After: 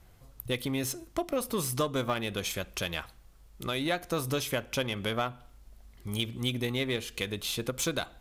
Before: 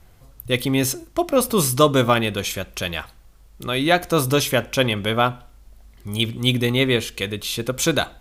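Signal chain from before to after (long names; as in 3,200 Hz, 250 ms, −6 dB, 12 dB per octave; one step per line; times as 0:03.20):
downward compressor 3 to 1, threshold −25 dBFS, peak gain reduction 12 dB
harmonic generator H 6 −29 dB, 7 −32 dB, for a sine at −11.5 dBFS
level −4 dB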